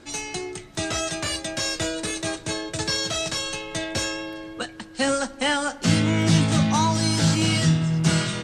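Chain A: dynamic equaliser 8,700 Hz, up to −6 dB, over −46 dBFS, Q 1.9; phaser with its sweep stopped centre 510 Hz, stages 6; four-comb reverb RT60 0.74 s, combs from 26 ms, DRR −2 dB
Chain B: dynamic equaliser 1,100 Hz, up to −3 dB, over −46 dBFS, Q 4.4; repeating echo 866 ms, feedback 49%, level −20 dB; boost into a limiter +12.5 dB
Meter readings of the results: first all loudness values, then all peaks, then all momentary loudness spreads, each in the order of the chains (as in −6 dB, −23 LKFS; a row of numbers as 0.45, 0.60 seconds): −24.5, −12.5 LKFS; −7.5, −1.0 dBFS; 11, 9 LU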